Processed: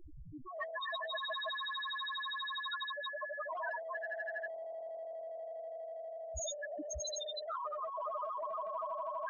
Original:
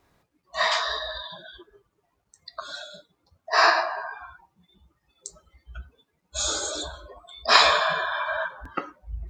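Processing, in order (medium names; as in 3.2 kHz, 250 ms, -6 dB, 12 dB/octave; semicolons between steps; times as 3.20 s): rattle on loud lows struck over -33 dBFS, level -18 dBFS; echo with a slow build-up 81 ms, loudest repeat 8, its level -5 dB; on a send at -1.5 dB: reverberation RT60 0.70 s, pre-delay 3 ms; on the sum: loudest bins only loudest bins 1; in parallel at -1 dB: compression, threshold -38 dBFS, peak gain reduction 12.5 dB; on the sum: spectrum-flattening compressor 10:1; trim +1 dB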